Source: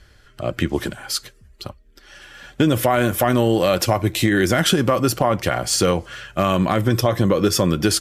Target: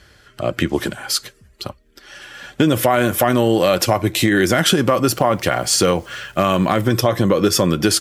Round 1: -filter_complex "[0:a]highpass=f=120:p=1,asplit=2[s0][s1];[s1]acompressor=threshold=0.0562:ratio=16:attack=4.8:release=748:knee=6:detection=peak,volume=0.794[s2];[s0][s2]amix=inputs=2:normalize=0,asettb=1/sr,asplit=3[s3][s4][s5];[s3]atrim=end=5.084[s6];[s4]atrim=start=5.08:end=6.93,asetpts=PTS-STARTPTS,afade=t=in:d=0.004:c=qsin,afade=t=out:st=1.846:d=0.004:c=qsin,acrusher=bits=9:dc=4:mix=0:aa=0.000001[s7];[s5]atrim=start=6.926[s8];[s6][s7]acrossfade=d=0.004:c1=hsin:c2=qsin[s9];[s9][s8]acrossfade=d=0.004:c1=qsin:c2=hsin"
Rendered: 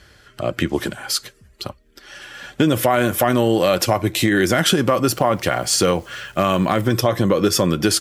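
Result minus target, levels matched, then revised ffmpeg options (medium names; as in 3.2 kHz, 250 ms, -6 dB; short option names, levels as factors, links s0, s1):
compression: peak gain reduction +7 dB
-filter_complex "[0:a]highpass=f=120:p=1,asplit=2[s0][s1];[s1]acompressor=threshold=0.133:ratio=16:attack=4.8:release=748:knee=6:detection=peak,volume=0.794[s2];[s0][s2]amix=inputs=2:normalize=0,asettb=1/sr,asplit=3[s3][s4][s5];[s3]atrim=end=5.084[s6];[s4]atrim=start=5.08:end=6.93,asetpts=PTS-STARTPTS,afade=t=in:d=0.004:c=qsin,afade=t=out:st=1.846:d=0.004:c=qsin,acrusher=bits=9:dc=4:mix=0:aa=0.000001[s7];[s5]atrim=start=6.926[s8];[s6][s7]acrossfade=d=0.004:c1=hsin:c2=qsin[s9];[s9][s8]acrossfade=d=0.004:c1=qsin:c2=hsin"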